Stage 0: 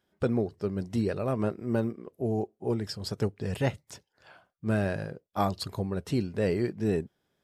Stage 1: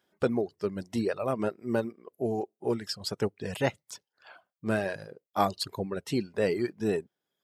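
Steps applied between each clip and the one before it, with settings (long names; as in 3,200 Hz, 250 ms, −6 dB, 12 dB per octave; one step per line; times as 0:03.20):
high-pass filter 300 Hz 6 dB per octave
reverb reduction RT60 0.99 s
level +3.5 dB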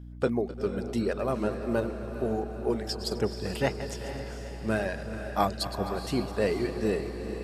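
feedback delay that plays each chunk backwards 129 ms, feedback 47%, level −12 dB
mains hum 60 Hz, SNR 12 dB
feedback delay with all-pass diffusion 466 ms, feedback 57%, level −9 dB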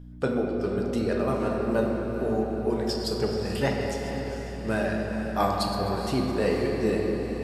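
convolution reverb RT60 3.1 s, pre-delay 7 ms, DRR 0.5 dB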